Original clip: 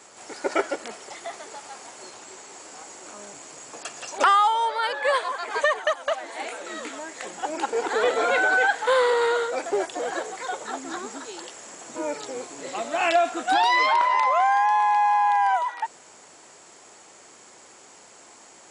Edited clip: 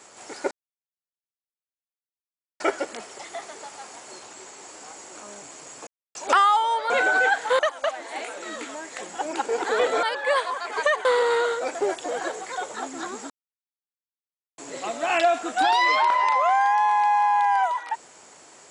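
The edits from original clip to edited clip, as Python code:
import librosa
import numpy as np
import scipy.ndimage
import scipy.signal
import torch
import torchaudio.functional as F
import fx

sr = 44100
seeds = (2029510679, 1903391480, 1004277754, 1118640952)

y = fx.edit(x, sr, fx.insert_silence(at_s=0.51, length_s=2.09),
    fx.silence(start_s=3.78, length_s=0.28),
    fx.swap(start_s=4.81, length_s=1.02, other_s=8.27, other_length_s=0.69),
    fx.silence(start_s=11.21, length_s=1.28), tone=tone)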